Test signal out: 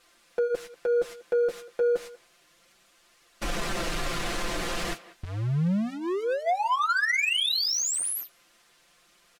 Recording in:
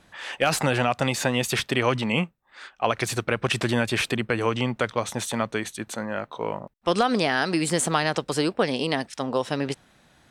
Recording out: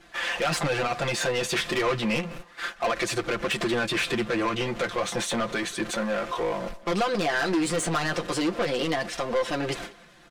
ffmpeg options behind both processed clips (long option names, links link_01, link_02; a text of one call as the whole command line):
ffmpeg -i in.wav -filter_complex "[0:a]aeval=exprs='val(0)+0.5*0.0178*sgn(val(0))':channel_layout=same,lowpass=11000,aemphasis=mode=reproduction:type=cd,bandreject=frequency=870:width=12,agate=range=-19dB:threshold=-38dB:ratio=16:detection=peak,equalizer=frequency=99:width_type=o:width=2.1:gain=-8.5,aecho=1:1:5.8:0.77,asplit=2[link_01][link_02];[link_02]acompressor=threshold=-32dB:ratio=6,volume=1.5dB[link_03];[link_01][link_03]amix=inputs=2:normalize=0,asoftclip=type=tanh:threshold=-20dB,flanger=delay=2.3:depth=9.7:regen=-46:speed=0.31:shape=triangular,asplit=2[link_04][link_05];[link_05]adelay=190,highpass=300,lowpass=3400,asoftclip=type=hard:threshold=-29.5dB,volume=-17dB[link_06];[link_04][link_06]amix=inputs=2:normalize=0,volume=3dB" out.wav